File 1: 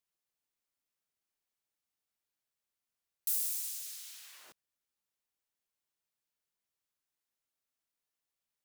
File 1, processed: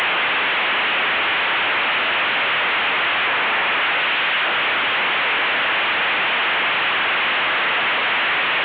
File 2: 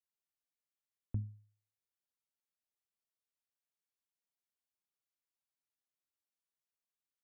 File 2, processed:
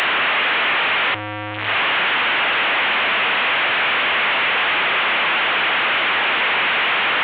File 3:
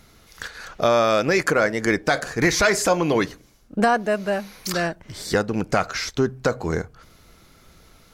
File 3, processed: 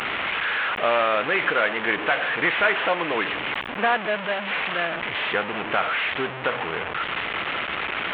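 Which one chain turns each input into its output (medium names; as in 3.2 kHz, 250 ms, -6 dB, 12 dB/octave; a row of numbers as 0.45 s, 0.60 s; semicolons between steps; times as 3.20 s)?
one-bit delta coder 16 kbps, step -17.5 dBFS; high-pass 1.1 kHz 6 dB/octave; peak normalisation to -9 dBFS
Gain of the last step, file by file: +8.0 dB, +9.0 dB, +2.0 dB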